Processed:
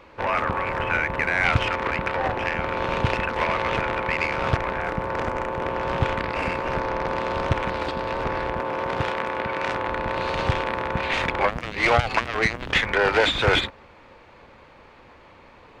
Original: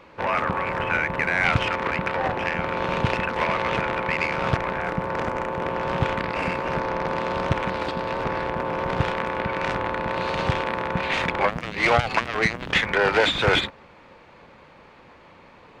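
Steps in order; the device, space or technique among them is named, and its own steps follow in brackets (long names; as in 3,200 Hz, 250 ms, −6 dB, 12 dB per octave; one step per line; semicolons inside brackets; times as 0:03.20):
low shelf boost with a cut just above (low-shelf EQ 73 Hz +7.5 dB; parametric band 170 Hz −6 dB 0.55 octaves)
0:08.59–0:09.88: high-pass filter 170 Hz 6 dB per octave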